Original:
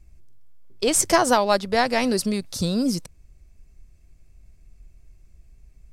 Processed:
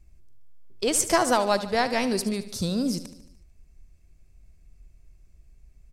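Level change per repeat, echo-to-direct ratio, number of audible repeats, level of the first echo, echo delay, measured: -4.5 dB, -12.0 dB, 5, -14.0 dB, 74 ms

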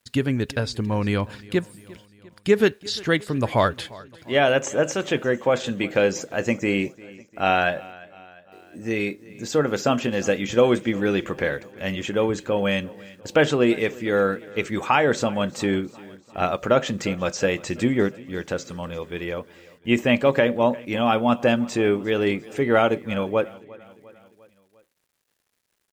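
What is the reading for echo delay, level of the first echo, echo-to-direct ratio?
0.35 s, -21.5 dB, -20.0 dB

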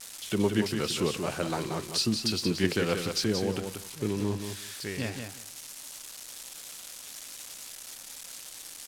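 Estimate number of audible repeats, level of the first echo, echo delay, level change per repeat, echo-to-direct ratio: 2, -6.5 dB, 0.179 s, -15.5 dB, -6.5 dB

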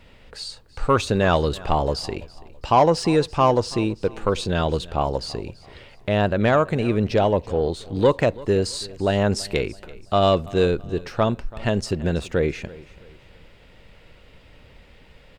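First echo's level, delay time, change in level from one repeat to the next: -20.5 dB, 0.332 s, -9.0 dB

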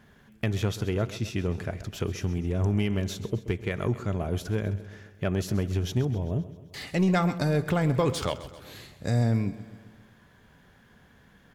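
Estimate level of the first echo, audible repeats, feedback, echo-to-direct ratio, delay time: -15.5 dB, 5, 58%, -13.5 dB, 0.131 s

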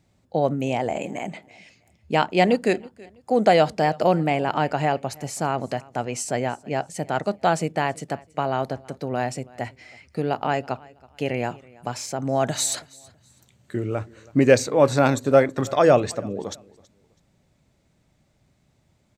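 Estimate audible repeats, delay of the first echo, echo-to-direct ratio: 2, 0.326 s, -23.0 dB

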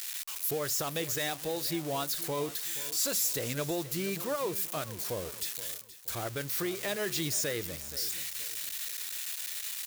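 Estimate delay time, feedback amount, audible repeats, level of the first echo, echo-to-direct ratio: 0.475 s, 35%, 3, -16.0 dB, -15.5 dB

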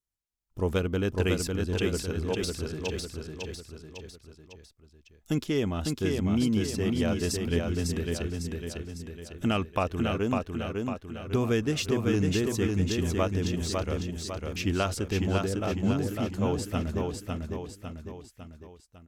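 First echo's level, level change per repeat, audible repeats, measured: -3.5 dB, -6.0 dB, 4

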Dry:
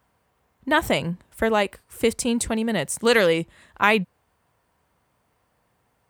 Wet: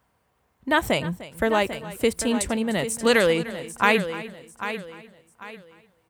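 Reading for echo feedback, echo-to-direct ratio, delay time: no steady repeat, -9.5 dB, 0.301 s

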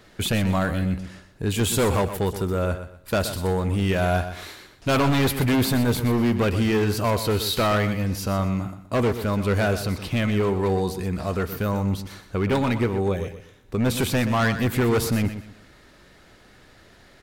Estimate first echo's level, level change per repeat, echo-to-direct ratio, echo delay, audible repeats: -11.0 dB, -11.0 dB, -10.5 dB, 0.123 s, 3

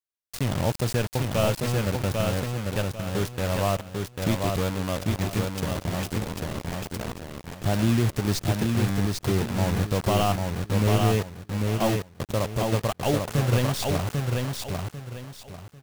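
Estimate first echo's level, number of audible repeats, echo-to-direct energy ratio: -3.5 dB, 3, -3.0 dB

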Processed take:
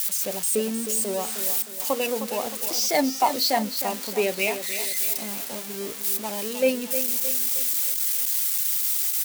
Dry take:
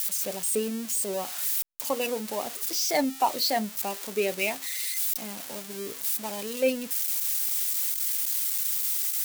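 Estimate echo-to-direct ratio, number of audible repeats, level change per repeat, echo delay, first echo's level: -9.0 dB, 4, -7.0 dB, 0.31 s, -10.0 dB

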